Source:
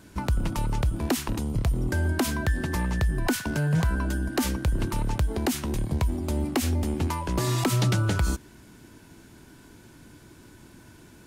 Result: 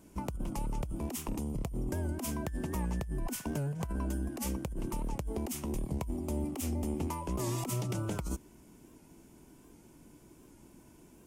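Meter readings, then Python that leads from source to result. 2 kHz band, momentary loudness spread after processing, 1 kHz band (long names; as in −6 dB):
−16.5 dB, 4 LU, −9.0 dB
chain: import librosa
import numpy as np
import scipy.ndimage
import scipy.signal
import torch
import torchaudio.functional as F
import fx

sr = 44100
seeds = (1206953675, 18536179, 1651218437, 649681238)

y = fx.graphic_eq_15(x, sr, hz=(100, 1600, 4000), db=(-9, -12, -11))
y = fx.over_compress(y, sr, threshold_db=-27.0, ratio=-0.5)
y = fx.record_warp(y, sr, rpm=78.0, depth_cents=100.0)
y = y * librosa.db_to_amplitude(-6.0)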